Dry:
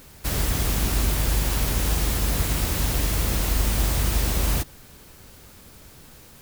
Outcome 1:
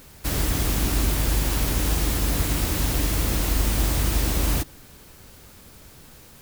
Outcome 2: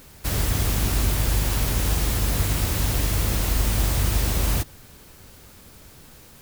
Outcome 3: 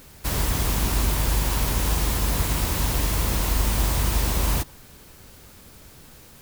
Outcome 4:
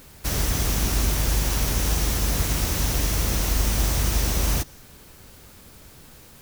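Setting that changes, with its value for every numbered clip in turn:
dynamic EQ, frequency: 300, 100, 980, 5900 Hz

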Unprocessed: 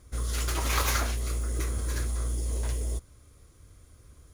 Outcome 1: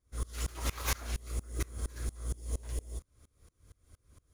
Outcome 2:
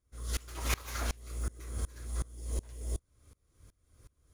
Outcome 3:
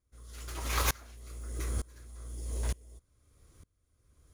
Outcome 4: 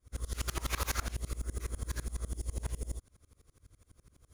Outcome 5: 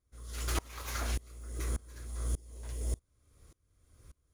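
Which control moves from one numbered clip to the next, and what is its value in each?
dB-ramp tremolo, rate: 4.3, 2.7, 1.1, 12, 1.7 Hz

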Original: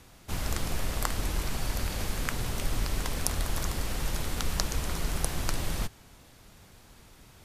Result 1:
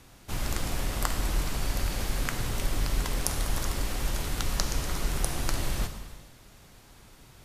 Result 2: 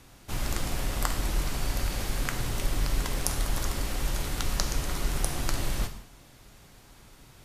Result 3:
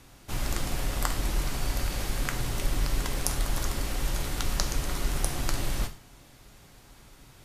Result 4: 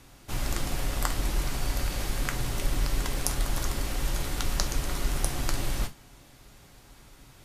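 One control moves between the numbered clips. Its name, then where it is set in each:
non-linear reverb, gate: 500, 240, 140, 90 ms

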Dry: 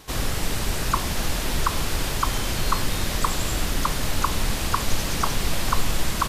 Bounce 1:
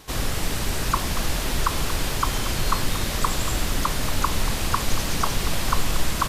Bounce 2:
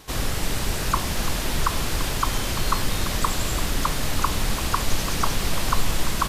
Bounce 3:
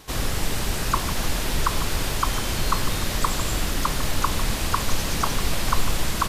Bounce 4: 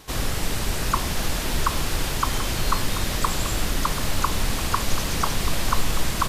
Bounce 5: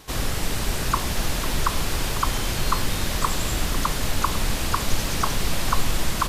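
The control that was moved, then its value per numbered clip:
lo-fi delay, time: 0.232, 0.34, 0.15, 0.735, 0.499 s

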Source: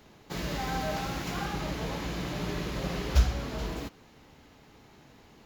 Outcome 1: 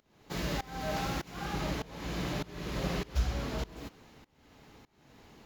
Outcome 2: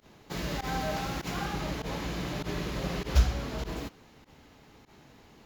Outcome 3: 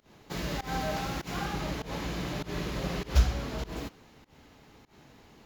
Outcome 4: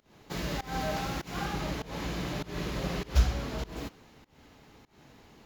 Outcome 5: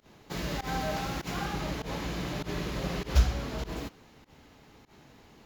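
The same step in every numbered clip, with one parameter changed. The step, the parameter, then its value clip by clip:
pump, release: 514, 68, 154, 236, 103 ms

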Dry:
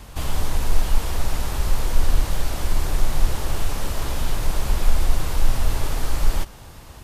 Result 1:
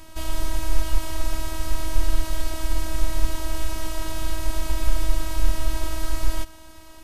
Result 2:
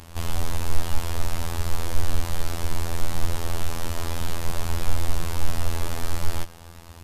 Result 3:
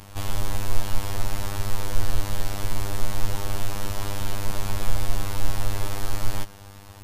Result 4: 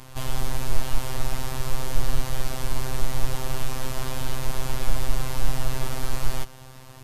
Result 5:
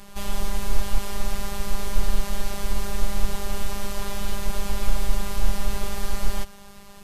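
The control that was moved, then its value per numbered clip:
robotiser, frequency: 320, 84, 100, 130, 200 Hz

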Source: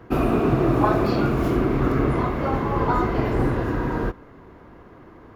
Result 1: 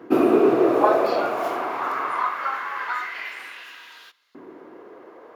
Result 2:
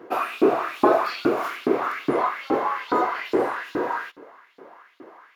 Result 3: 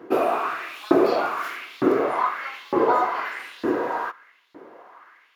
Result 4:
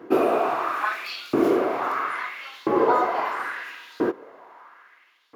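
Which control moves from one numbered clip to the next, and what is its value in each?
LFO high-pass, rate: 0.23, 2.4, 1.1, 0.75 Hz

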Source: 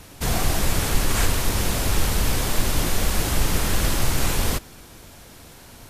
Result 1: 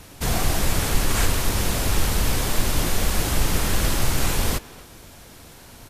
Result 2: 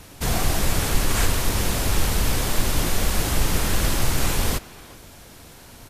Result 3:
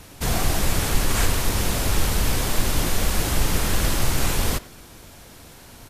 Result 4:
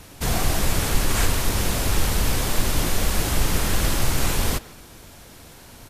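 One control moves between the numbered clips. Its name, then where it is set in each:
speakerphone echo, time: 250, 370, 90, 150 ms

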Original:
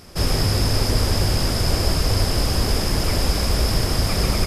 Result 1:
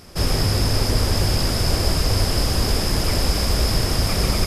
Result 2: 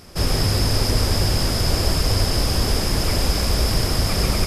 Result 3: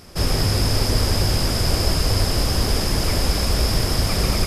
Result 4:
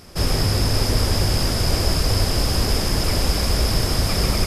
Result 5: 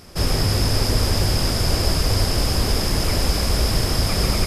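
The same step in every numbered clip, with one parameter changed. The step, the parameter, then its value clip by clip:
thin delay, time: 0.988, 0.141, 0.214, 0.585, 0.317 s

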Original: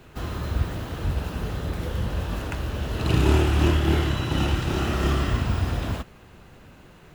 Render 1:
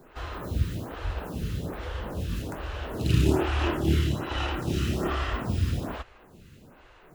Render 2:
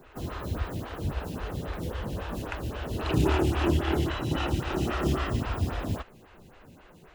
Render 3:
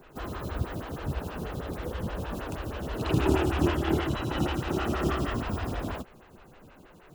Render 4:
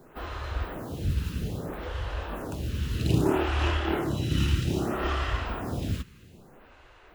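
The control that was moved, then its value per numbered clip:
photocell phaser, rate: 1.2, 3.7, 6.3, 0.62 Hz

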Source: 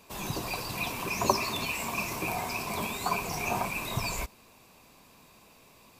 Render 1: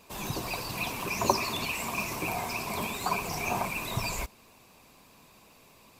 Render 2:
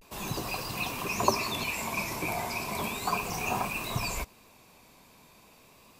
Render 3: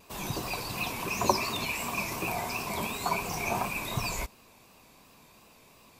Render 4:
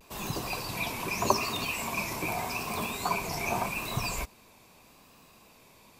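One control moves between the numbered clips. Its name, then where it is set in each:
vibrato, rate: 16, 0.35, 2.8, 0.82 Hz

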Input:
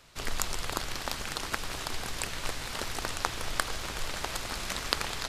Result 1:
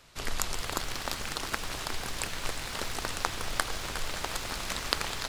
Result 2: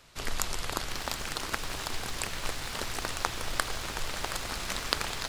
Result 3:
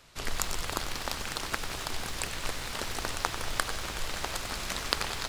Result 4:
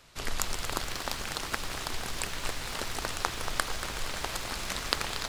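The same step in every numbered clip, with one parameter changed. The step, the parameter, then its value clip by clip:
lo-fi delay, time: 359, 722, 95, 233 ms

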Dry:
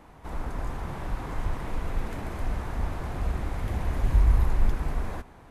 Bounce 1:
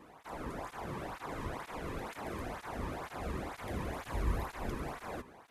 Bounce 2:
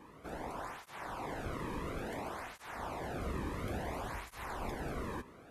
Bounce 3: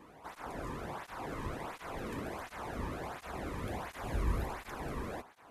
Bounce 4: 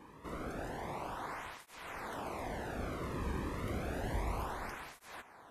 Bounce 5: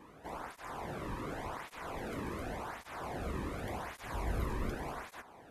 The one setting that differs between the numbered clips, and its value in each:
tape flanging out of phase, nulls at: 2.1, 0.58, 1.4, 0.3, 0.88 Hz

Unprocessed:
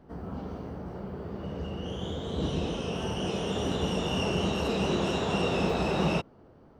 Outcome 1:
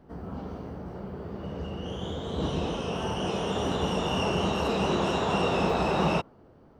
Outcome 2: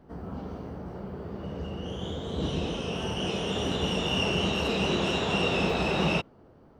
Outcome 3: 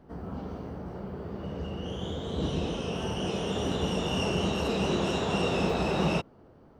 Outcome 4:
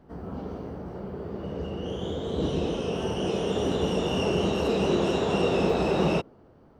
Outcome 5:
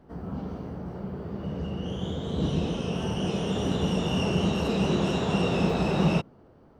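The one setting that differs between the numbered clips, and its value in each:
dynamic EQ, frequency: 1000, 2800, 8000, 410, 160 Hz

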